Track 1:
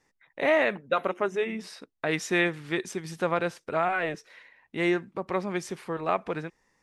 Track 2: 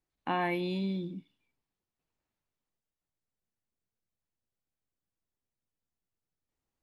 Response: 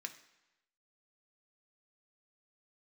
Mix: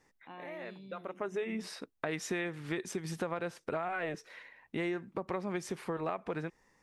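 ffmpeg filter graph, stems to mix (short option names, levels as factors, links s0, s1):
-filter_complex "[0:a]acompressor=threshold=0.0178:ratio=2,highshelf=f=5200:g=8.5,volume=1.26[s0];[1:a]highshelf=f=2300:g=9,volume=0.119,asplit=2[s1][s2];[s2]apad=whole_len=300805[s3];[s0][s3]sidechaincompress=threshold=0.00112:ratio=8:attack=7.9:release=390[s4];[s4][s1]amix=inputs=2:normalize=0,highshelf=f=3000:g=-9.5,acompressor=threshold=0.0282:ratio=6"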